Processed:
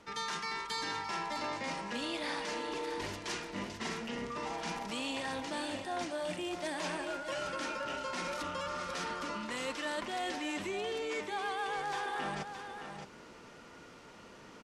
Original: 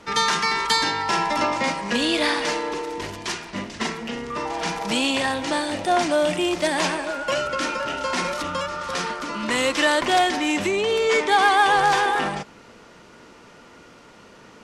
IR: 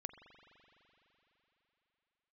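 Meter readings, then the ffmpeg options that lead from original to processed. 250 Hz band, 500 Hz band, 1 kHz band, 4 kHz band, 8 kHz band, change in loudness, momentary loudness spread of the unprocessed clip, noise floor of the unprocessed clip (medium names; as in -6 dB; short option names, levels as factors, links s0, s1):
-14.0 dB, -15.0 dB, -15.5 dB, -15.0 dB, -14.5 dB, -15.5 dB, 11 LU, -48 dBFS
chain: -af "areverse,acompressor=threshold=0.0355:ratio=6,areverse,aecho=1:1:618:0.398,volume=0.473"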